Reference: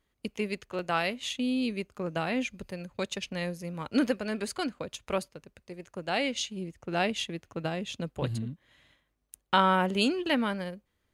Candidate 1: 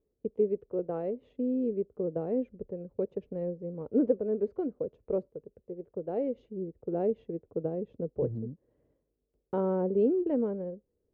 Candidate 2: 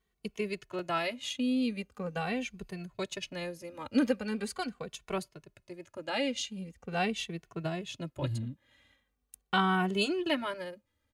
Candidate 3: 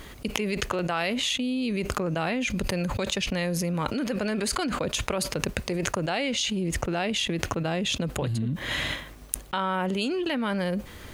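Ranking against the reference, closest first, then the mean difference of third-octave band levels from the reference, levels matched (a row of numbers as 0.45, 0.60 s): 2, 3, 1; 2.0, 7.5, 12.0 dB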